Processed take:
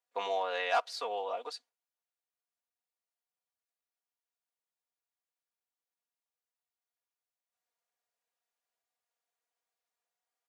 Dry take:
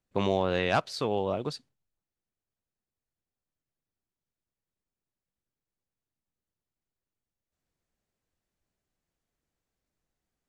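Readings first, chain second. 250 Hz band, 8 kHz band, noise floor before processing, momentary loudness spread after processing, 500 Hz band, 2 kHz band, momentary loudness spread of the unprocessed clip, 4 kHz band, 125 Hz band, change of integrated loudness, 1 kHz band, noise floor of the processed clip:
-25.5 dB, -4.0 dB, under -85 dBFS, 12 LU, -7.0 dB, -3.0 dB, 9 LU, -3.5 dB, under -35 dB, -5.0 dB, -1.0 dB, under -85 dBFS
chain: ladder high-pass 520 Hz, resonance 25%; comb 4.2 ms, depth 87%

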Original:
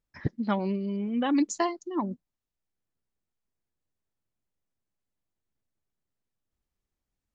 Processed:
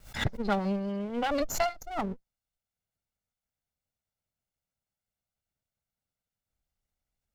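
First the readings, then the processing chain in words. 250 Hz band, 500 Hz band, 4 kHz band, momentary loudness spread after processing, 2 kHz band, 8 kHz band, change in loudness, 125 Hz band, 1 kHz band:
-5.5 dB, +1.0 dB, +4.0 dB, 6 LU, +4.0 dB, no reading, -2.0 dB, -1.0 dB, +0.5 dB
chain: comb filter that takes the minimum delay 1.4 ms; swell ahead of each attack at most 130 dB/s

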